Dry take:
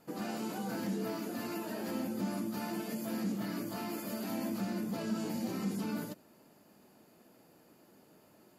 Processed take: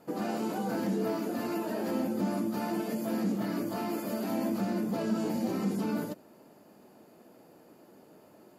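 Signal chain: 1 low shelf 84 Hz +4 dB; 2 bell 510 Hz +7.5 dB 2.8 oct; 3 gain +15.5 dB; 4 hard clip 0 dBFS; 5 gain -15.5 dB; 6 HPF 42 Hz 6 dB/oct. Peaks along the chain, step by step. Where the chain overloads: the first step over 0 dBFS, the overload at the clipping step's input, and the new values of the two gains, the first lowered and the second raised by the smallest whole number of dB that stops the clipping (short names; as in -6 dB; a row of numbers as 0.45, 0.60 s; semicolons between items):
-24.0, -19.5, -4.0, -4.0, -19.5, -19.5 dBFS; no overload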